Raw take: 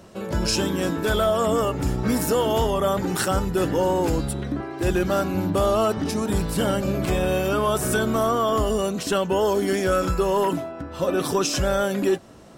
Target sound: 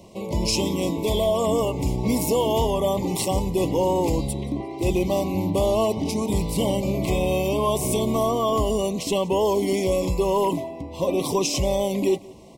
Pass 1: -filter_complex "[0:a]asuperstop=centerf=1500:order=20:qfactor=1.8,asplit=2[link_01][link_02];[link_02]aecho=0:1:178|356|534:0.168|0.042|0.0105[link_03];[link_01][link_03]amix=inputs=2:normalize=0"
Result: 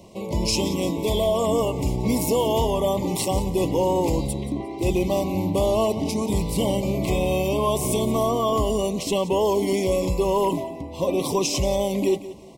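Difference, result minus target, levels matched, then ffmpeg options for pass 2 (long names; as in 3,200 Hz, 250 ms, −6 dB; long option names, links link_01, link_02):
echo-to-direct +8 dB
-filter_complex "[0:a]asuperstop=centerf=1500:order=20:qfactor=1.8,asplit=2[link_01][link_02];[link_02]aecho=0:1:178|356:0.0668|0.0167[link_03];[link_01][link_03]amix=inputs=2:normalize=0"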